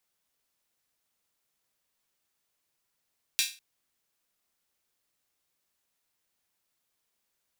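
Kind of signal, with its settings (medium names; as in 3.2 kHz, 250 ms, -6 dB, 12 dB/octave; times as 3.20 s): open hi-hat length 0.20 s, high-pass 2.9 kHz, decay 0.32 s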